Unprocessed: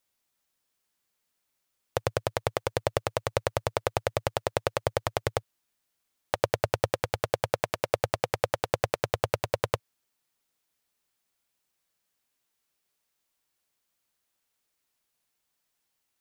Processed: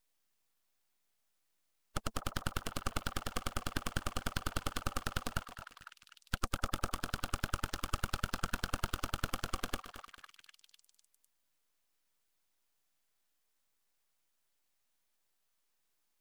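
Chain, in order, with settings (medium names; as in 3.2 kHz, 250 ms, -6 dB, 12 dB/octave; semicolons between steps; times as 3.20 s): coarse spectral quantiser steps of 15 dB; bass shelf 350 Hz -7 dB; band-stop 3.1 kHz, Q 21; in parallel at +1 dB: peak limiter -18 dBFS, peak gain reduction 10 dB; on the sum: static phaser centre 300 Hz, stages 8; full-wave rectifier; on a send: repeats whose band climbs or falls 251 ms, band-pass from 890 Hz, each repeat 0.7 oct, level -7 dB; on the sum: bit-crushed delay 221 ms, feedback 35%, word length 7-bit, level -14 dB; trim -4.5 dB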